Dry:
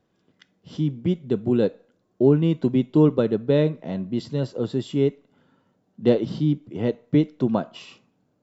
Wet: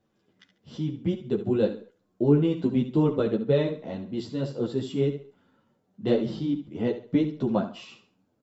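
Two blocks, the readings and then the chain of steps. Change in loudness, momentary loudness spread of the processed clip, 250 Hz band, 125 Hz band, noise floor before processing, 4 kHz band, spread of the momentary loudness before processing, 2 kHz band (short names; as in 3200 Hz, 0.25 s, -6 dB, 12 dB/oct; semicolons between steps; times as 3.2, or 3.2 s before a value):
-4.0 dB, 11 LU, -4.0 dB, -4.5 dB, -69 dBFS, -2.5 dB, 9 LU, -2.5 dB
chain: feedback echo 71 ms, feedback 30%, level -11 dB; ensemble effect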